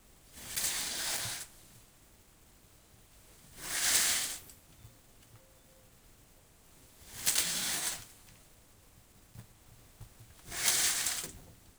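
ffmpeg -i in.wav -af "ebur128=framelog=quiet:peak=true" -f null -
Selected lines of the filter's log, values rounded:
Integrated loudness:
  I:         -31.0 LUFS
  Threshold: -45.1 LUFS
Loudness range:
  LRA:         4.5 LU
  Threshold: -55.5 LUFS
  LRA low:   -38.6 LUFS
  LRA high:  -34.0 LUFS
True peak:
  Peak:      -11.6 dBFS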